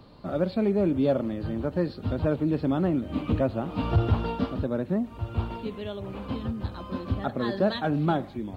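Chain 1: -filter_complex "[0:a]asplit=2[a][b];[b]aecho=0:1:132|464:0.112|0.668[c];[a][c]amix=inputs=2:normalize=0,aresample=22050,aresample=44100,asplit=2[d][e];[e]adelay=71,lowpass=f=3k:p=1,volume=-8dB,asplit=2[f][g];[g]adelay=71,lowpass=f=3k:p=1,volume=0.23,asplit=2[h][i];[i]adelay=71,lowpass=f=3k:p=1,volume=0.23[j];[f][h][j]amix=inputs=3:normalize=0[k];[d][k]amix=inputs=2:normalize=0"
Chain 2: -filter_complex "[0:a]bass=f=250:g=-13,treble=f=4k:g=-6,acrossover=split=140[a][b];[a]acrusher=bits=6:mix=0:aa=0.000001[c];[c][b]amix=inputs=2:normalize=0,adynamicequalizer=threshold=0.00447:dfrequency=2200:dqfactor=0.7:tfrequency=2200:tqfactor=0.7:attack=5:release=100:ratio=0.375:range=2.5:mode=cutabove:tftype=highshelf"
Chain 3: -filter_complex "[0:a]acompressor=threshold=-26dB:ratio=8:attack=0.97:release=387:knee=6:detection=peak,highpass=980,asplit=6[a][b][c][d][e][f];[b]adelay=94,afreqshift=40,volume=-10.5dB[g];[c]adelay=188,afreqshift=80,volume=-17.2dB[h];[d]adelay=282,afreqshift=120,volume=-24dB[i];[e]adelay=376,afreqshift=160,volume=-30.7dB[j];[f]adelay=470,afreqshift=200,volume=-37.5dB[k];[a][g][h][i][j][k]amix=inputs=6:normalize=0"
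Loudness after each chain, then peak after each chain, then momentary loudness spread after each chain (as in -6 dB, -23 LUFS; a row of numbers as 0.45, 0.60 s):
-25.5, -32.5, -46.0 LUFS; -10.0, -15.5, -28.0 dBFS; 9, 11, 6 LU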